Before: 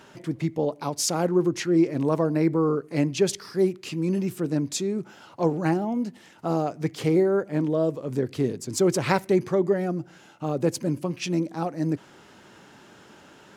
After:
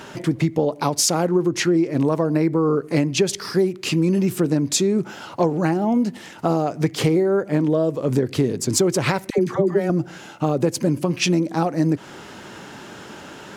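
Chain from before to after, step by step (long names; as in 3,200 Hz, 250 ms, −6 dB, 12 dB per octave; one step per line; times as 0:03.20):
downward compressor 10 to 1, threshold −27 dBFS, peak gain reduction 12 dB
0:09.30–0:09.90: all-pass dispersion lows, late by 83 ms, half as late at 670 Hz
boost into a limiter +17.5 dB
level −5.5 dB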